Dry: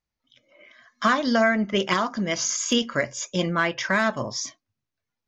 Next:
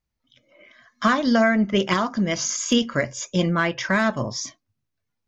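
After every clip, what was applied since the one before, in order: low shelf 260 Hz +7.5 dB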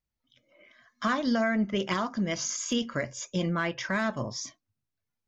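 limiter -11.5 dBFS, peak gain reduction 3.5 dB; gain -6.5 dB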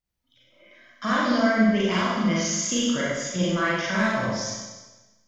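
Schroeder reverb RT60 1.2 s, combs from 33 ms, DRR -7 dB; gain -1.5 dB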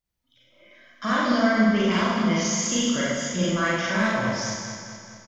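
feedback echo 0.214 s, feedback 58%, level -9 dB

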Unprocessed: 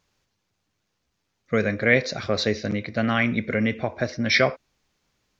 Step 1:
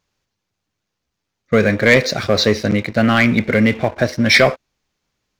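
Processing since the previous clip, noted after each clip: sample leveller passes 2; gain +2 dB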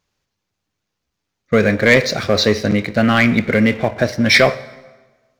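plate-style reverb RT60 1.3 s, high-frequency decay 0.75×, DRR 15.5 dB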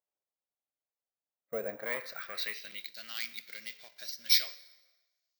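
band-pass sweep 640 Hz -> 4700 Hz, 1.66–2.98; careless resampling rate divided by 2×, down none, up hold; pre-emphasis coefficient 0.8; gain -2.5 dB

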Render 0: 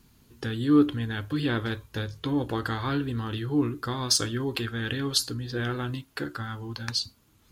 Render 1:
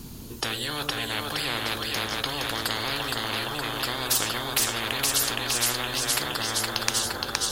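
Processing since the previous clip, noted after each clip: bell 1800 Hz -8 dB 1.5 oct; split-band echo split 450 Hz, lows 82 ms, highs 0.467 s, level -5 dB; spectral compressor 10:1; gain +8 dB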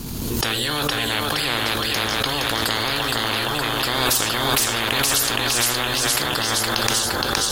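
in parallel at -3 dB: negative-ratio compressor -33 dBFS, ratio -1; on the sum: sample leveller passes 1; backwards sustainer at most 26 dB/s; gain -1 dB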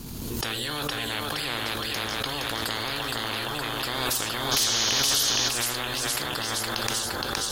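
painted sound noise, 4.51–5.49, 2900–6800 Hz -18 dBFS; gain -7.5 dB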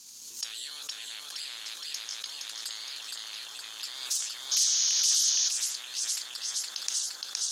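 band-pass 6300 Hz, Q 2.5; gain +3 dB

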